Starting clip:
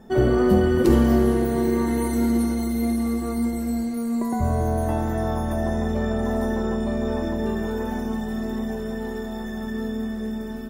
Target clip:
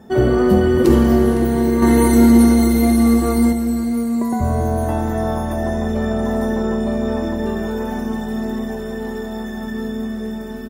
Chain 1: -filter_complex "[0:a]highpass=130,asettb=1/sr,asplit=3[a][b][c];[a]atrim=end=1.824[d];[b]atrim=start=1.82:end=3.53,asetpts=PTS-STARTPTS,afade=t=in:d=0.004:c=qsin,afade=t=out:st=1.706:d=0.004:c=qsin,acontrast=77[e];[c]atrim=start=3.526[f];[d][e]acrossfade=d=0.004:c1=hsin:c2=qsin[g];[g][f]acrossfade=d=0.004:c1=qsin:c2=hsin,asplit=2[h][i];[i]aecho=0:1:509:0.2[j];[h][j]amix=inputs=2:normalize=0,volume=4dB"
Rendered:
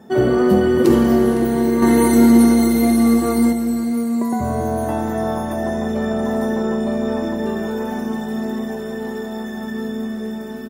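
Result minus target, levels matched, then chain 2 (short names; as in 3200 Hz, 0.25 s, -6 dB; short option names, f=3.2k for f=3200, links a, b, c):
125 Hz band -5.0 dB
-filter_complex "[0:a]highpass=46,asettb=1/sr,asplit=3[a][b][c];[a]atrim=end=1.824[d];[b]atrim=start=1.82:end=3.53,asetpts=PTS-STARTPTS,afade=t=in:d=0.004:c=qsin,afade=t=out:st=1.706:d=0.004:c=qsin,acontrast=77[e];[c]atrim=start=3.526[f];[d][e]acrossfade=d=0.004:c1=hsin:c2=qsin[g];[g][f]acrossfade=d=0.004:c1=qsin:c2=hsin,asplit=2[h][i];[i]aecho=0:1:509:0.2[j];[h][j]amix=inputs=2:normalize=0,volume=4dB"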